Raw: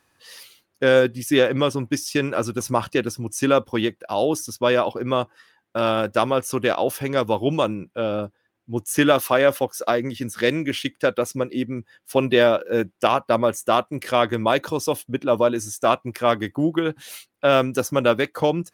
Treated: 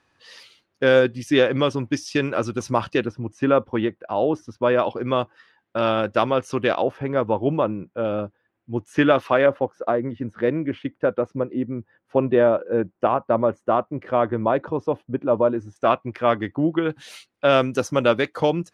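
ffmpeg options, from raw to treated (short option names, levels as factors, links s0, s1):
-af "asetnsamples=n=441:p=0,asendcmd='3.06 lowpass f 1900;4.79 lowpass f 4100;6.82 lowpass f 1600;8.05 lowpass f 2600;9.46 lowpass f 1200;15.76 lowpass f 2600;16.9 lowpass f 6200',lowpass=5000"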